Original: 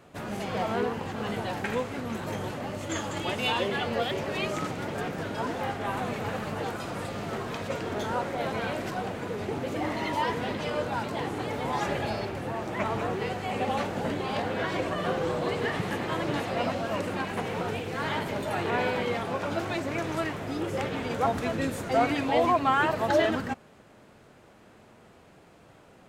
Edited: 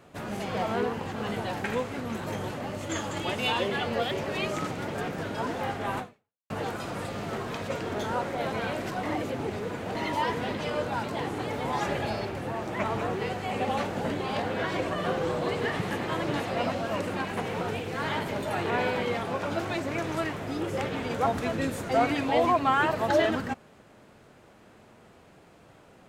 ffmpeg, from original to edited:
-filter_complex "[0:a]asplit=4[a][b][c][d];[a]atrim=end=6.5,asetpts=PTS-STARTPTS,afade=t=out:st=5.99:d=0.51:c=exp[e];[b]atrim=start=6.5:end=9.032,asetpts=PTS-STARTPTS,afade=t=in:d=0.004:c=hsin[f];[c]atrim=start=9.028:end=9.952,asetpts=PTS-STARTPTS,areverse[g];[d]atrim=start=9.948[h];[e][f]concat=n=2:v=0:a=1[i];[i][g]acrossfade=d=0.004:c1=hsin:c2=hsin[j];[j][h]acrossfade=d=0.004:c1=hsin:c2=hsin"

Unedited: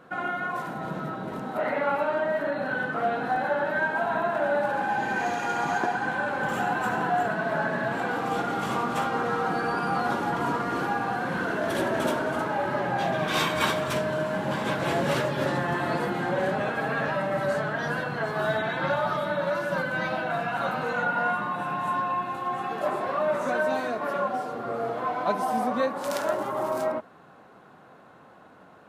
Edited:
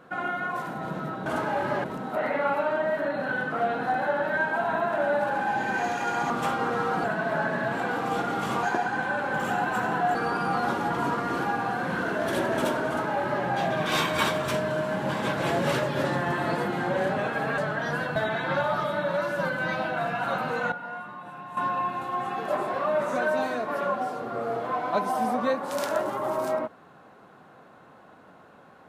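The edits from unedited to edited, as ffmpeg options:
-filter_complex "[0:a]asplit=11[a][b][c][d][e][f][g][h][i][j][k];[a]atrim=end=1.262[l];[b]atrim=start=12.288:end=12.872[m];[c]atrim=start=1.258:end=5.722[n];[d]atrim=start=8.828:end=9.572[o];[e]atrim=start=7.238:end=8.832[p];[f]atrim=start=5.718:end=7.242[q];[g]atrim=start=9.568:end=17.002[r];[h]atrim=start=17.548:end=18.132[s];[i]atrim=start=18.488:end=21.052[t];[j]atrim=start=21.048:end=21.902,asetpts=PTS-STARTPTS,volume=-11dB[u];[k]atrim=start=21.898[v];[l][m]acrossfade=d=0.004:c1=hsin:c2=hsin[w];[w][n]acrossfade=d=0.004:c1=hsin:c2=hsin[x];[x][o]acrossfade=d=0.004:c1=hsin:c2=hsin[y];[y][p]acrossfade=d=0.004:c1=hsin:c2=hsin[z];[z][q]acrossfade=d=0.004:c1=hsin:c2=hsin[aa];[aa][r]acrossfade=d=0.004:c1=hsin:c2=hsin[ab];[ab][s]acrossfade=d=0.004:c1=hsin:c2=hsin[ac];[ac][t]acrossfade=d=0.004:c1=hsin:c2=hsin[ad];[ad][u]acrossfade=d=0.004:c1=hsin:c2=hsin[ae];[ae][v]acrossfade=d=0.004:c1=hsin:c2=hsin"

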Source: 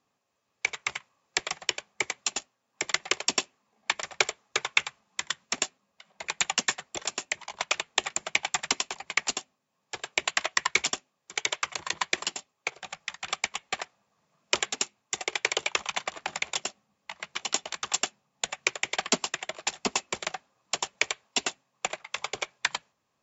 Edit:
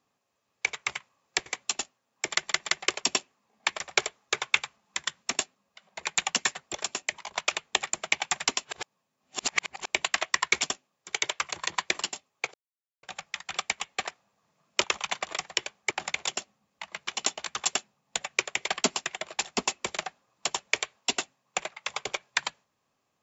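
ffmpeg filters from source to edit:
-filter_complex "[0:a]asplit=10[a][b][c][d][e][f][g][h][i][j];[a]atrim=end=1.462[k];[b]atrim=start=2.028:end=3.052[l];[c]atrim=start=2.878:end=3.052[m];[d]atrim=start=2.878:end=8.882[n];[e]atrim=start=8.878:end=10.112,asetpts=PTS-STARTPTS,areverse[o];[f]atrim=start=10.108:end=12.77,asetpts=PTS-STARTPTS,afade=t=out:st=2.658:d=0.004:c=hsin,apad=pad_dur=0.49[p];[g]atrim=start=12.77:end=14.582,asetpts=PTS-STARTPTS,afade=t=in:d=0.004:c=hsin[q];[h]atrim=start=15.688:end=16.192[r];[i]atrim=start=1.458:end=2.032[s];[j]atrim=start=16.188[t];[k][l]acrossfade=d=0.004:c1=hsin:c2=hsin[u];[u][m]acrossfade=d=0.004:c1=hsin:c2=hsin[v];[v][n]acrossfade=d=0.004:c1=hsin:c2=hsin[w];[w][o]acrossfade=d=0.004:c1=hsin:c2=hsin[x];[p][q]concat=n=2:v=0:a=1[y];[x][y]acrossfade=d=0.004:c1=hsin:c2=hsin[z];[z][r]acrossfade=d=0.004:c1=hsin:c2=hsin[aa];[aa][s]acrossfade=d=0.004:c1=hsin:c2=hsin[ab];[ab][t]acrossfade=d=0.004:c1=hsin:c2=hsin"

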